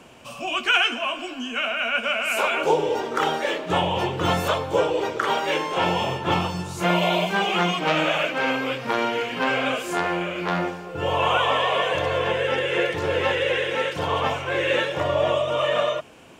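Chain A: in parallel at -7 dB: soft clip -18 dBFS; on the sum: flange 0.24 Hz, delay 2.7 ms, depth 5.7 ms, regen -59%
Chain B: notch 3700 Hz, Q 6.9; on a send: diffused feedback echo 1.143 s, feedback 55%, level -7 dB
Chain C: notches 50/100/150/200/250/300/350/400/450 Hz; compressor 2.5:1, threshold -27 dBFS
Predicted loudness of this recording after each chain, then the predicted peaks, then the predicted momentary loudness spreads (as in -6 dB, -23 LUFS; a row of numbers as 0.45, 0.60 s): -24.5, -22.0, -28.5 LUFS; -9.5, -6.5, -11.5 dBFS; 5, 4, 3 LU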